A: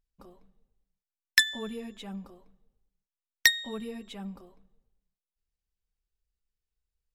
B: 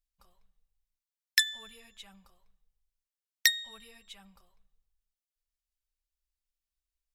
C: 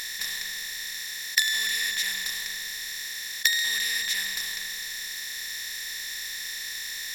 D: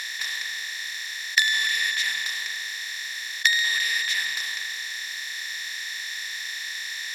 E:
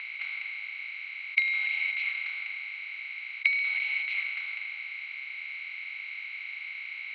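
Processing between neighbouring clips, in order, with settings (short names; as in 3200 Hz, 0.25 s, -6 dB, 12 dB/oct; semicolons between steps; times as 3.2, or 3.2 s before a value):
passive tone stack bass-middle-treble 10-0-10
per-bin compression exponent 0.2; gain -1.5 dB
band-pass 1900 Hz, Q 0.53; gain +5 dB
mistuned SSB +380 Hz 210–2600 Hz; gain -3.5 dB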